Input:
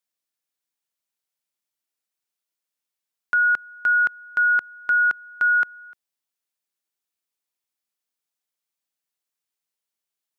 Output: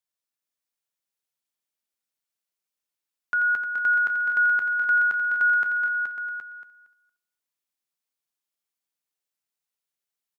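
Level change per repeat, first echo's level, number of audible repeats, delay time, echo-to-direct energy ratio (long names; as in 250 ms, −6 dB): repeats not evenly spaced, −8.0 dB, 11, 85 ms, −1.5 dB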